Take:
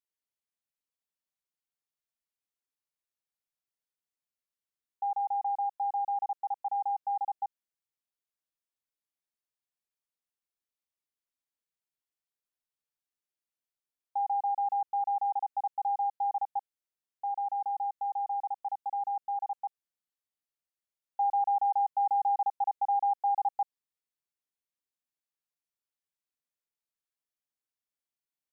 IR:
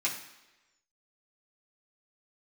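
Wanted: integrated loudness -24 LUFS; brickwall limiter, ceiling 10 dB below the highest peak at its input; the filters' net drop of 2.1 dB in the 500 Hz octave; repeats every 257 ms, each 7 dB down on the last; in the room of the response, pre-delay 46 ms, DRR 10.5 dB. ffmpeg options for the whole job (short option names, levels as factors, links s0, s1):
-filter_complex "[0:a]equalizer=f=500:t=o:g=-4,alimiter=level_in=3.16:limit=0.0631:level=0:latency=1,volume=0.316,aecho=1:1:257|514|771|1028|1285:0.447|0.201|0.0905|0.0407|0.0183,asplit=2[s0][s1];[1:a]atrim=start_sample=2205,adelay=46[s2];[s1][s2]afir=irnorm=-1:irlink=0,volume=0.141[s3];[s0][s3]amix=inputs=2:normalize=0,volume=5.01"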